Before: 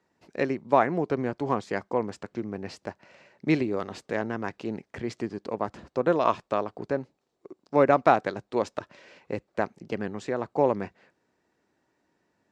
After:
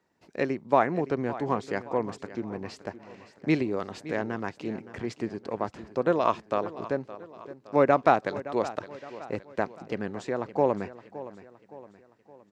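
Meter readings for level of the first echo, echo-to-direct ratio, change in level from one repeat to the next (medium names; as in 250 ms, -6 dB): -15.5 dB, -14.5 dB, -7.0 dB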